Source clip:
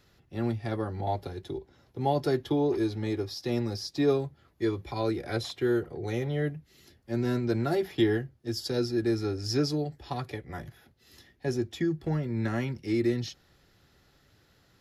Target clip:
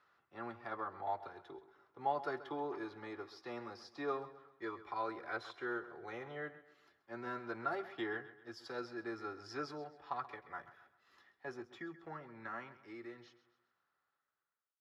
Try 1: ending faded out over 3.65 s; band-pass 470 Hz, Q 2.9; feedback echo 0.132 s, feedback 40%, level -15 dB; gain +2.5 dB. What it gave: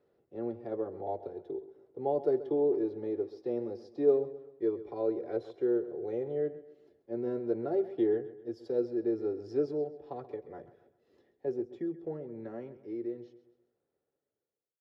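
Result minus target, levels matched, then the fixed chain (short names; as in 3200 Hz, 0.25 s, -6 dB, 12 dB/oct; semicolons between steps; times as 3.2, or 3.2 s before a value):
1000 Hz band -14.0 dB
ending faded out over 3.65 s; band-pass 1200 Hz, Q 2.9; feedback echo 0.132 s, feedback 40%, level -15 dB; gain +2.5 dB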